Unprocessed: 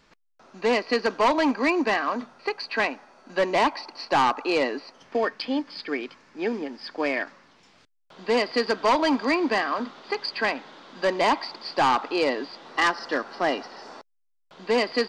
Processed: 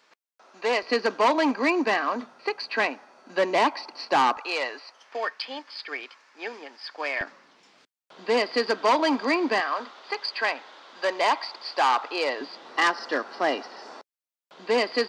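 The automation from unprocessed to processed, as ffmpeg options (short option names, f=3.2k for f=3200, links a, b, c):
-af "asetnsamples=n=441:p=0,asendcmd='0.83 highpass f 210;4.37 highpass f 760;7.21 highpass f 240;9.6 highpass f 530;12.41 highpass f 250',highpass=460"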